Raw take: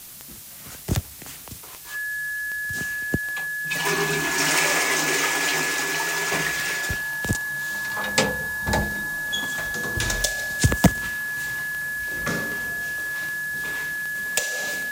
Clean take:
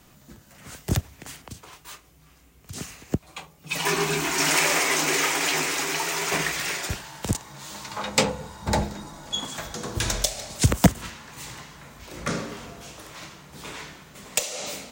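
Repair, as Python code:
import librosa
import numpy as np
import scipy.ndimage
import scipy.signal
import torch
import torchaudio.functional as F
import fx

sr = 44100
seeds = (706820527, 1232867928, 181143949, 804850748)

y = fx.fix_declick_ar(x, sr, threshold=10.0)
y = fx.notch(y, sr, hz=1700.0, q=30.0)
y = fx.noise_reduce(y, sr, print_start_s=0.0, print_end_s=0.5, reduce_db=13.0)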